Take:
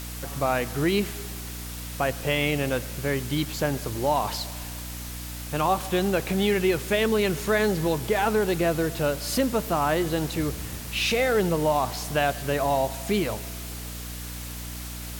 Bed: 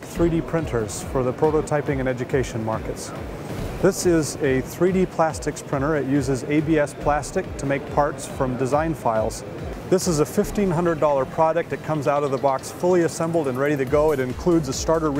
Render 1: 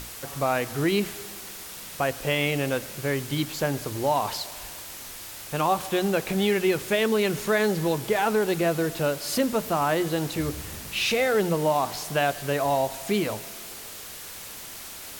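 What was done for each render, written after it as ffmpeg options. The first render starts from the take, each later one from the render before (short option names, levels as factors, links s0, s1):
-af "bandreject=f=60:t=h:w=6,bandreject=f=120:t=h:w=6,bandreject=f=180:t=h:w=6,bandreject=f=240:t=h:w=6,bandreject=f=300:t=h:w=6"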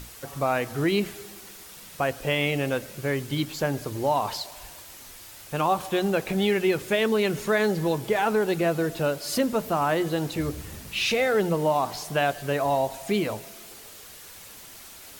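-af "afftdn=nr=6:nf=-40"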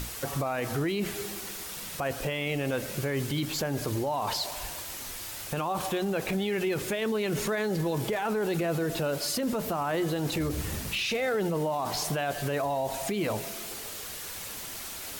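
-filter_complex "[0:a]asplit=2[s0][s1];[s1]acompressor=threshold=0.0316:ratio=6,volume=1[s2];[s0][s2]amix=inputs=2:normalize=0,alimiter=limit=0.0841:level=0:latency=1:release=22"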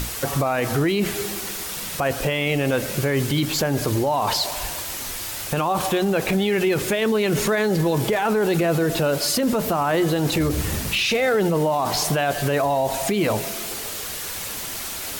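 -af "volume=2.66"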